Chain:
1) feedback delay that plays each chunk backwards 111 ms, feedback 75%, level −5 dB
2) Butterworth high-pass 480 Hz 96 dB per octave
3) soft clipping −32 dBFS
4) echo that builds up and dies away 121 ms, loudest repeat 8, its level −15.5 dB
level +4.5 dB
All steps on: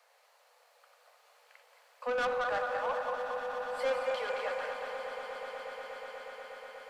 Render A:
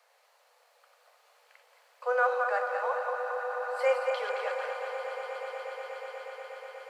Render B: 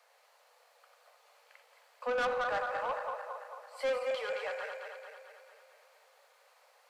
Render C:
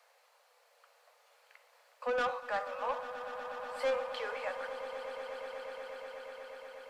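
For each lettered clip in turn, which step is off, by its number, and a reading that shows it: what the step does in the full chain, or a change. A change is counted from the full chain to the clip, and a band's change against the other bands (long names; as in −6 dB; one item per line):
3, distortion level −10 dB
4, echo-to-direct ratio −4.0 dB to none audible
1, 250 Hz band +1.5 dB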